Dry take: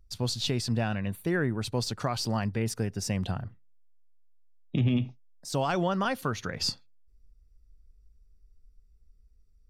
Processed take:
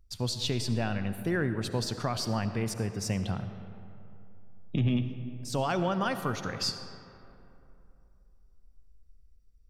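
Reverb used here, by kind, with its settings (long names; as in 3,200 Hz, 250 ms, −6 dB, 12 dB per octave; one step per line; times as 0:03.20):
comb and all-pass reverb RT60 2.9 s, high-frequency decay 0.5×, pre-delay 30 ms, DRR 9.5 dB
level −1.5 dB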